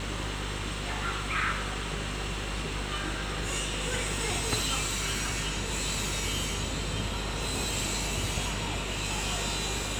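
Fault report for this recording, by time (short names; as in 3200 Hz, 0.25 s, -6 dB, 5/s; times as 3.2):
buzz 50 Hz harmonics 10 -37 dBFS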